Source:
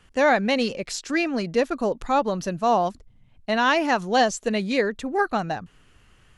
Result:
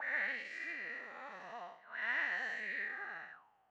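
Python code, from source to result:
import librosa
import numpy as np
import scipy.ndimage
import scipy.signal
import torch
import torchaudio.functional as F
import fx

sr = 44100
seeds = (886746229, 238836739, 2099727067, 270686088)

y = fx.spec_blur(x, sr, span_ms=385.0)
y = fx.auto_wah(y, sr, base_hz=700.0, top_hz=1900.0, q=12.0, full_db=-34.0, direction='up')
y = fx.stretch_vocoder(y, sr, factor=0.58)
y = F.gain(torch.from_numpy(y), 9.5).numpy()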